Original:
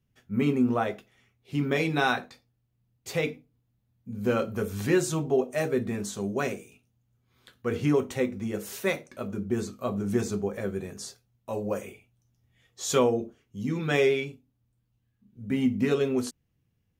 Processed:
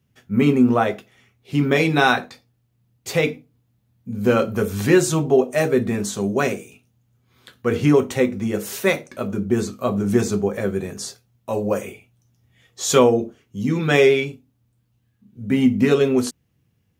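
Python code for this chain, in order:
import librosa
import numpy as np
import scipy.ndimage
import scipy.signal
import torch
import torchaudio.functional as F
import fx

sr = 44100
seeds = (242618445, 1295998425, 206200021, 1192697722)

y = scipy.signal.sosfilt(scipy.signal.butter(2, 68.0, 'highpass', fs=sr, output='sos'), x)
y = y * 10.0 ** (8.5 / 20.0)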